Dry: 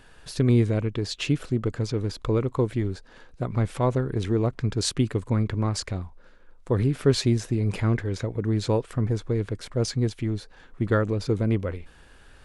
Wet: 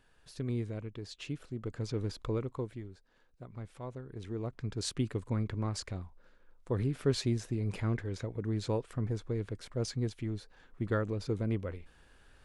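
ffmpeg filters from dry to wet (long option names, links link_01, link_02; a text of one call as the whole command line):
ffmpeg -i in.wav -af "volume=3.5dB,afade=type=in:start_time=1.54:duration=0.48:silence=0.398107,afade=type=out:start_time=2.02:duration=0.86:silence=0.237137,afade=type=in:start_time=4.02:duration=1.01:silence=0.298538" out.wav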